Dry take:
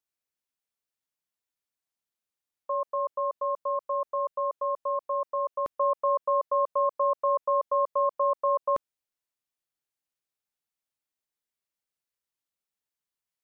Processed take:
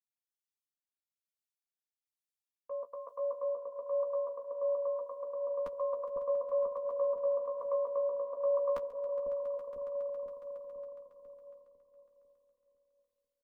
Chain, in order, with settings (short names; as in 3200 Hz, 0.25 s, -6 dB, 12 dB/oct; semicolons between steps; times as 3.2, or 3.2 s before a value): reverb removal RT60 0.72 s; comb 4.2 ms, depth 87%; in parallel at -1 dB: limiter -31 dBFS, peak gain reduction 11 dB; on the sum: harmonic tremolo 1.1 Hz, depth 50%, crossover 570 Hz; swelling echo 0.138 s, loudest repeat 5, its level -14 dB; flange 0.19 Hz, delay 9.7 ms, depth 6.4 ms, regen -27%; analogue delay 0.497 s, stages 2048, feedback 66%, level -3.5 dB; compressor 1.5:1, threshold -37 dBFS, peak gain reduction 4.5 dB; three-band expander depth 70%